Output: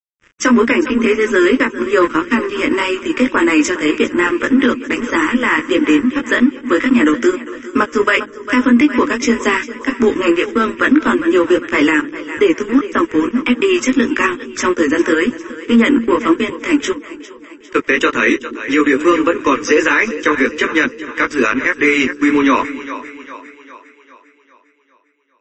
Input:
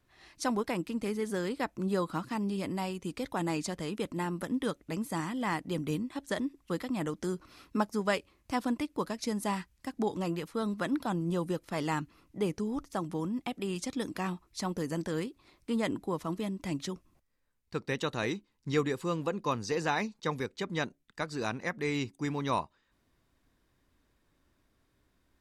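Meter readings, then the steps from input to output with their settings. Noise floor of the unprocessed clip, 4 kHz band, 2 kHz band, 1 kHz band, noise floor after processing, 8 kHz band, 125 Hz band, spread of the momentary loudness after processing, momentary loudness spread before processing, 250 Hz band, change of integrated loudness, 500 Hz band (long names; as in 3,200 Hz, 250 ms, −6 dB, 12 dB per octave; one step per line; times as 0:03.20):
−74 dBFS, +17.5 dB, +24.5 dB, +17.0 dB, −52 dBFS, +16.0 dB, +1.5 dB, 7 LU, 5 LU, +20.0 dB, +19.5 dB, +19.0 dB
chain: Chebyshev high-pass filter 230 Hz, order 10
high-shelf EQ 3,400 Hz +10.5 dB
reversed playback
upward compression, threshold −49 dBFS
reversed playback
chorus effect 1.7 Hz, delay 16.5 ms, depth 3.6 ms
dead-zone distortion −50 dBFS
high-frequency loss of the air 140 metres
phaser with its sweep stopped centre 1,800 Hz, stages 4
on a send: echo with a time of its own for lows and highs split 350 Hz, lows 228 ms, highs 402 ms, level −16 dB
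on the sum: boost into a limiter +33 dB
level −1.5 dB
MP3 32 kbit/s 32,000 Hz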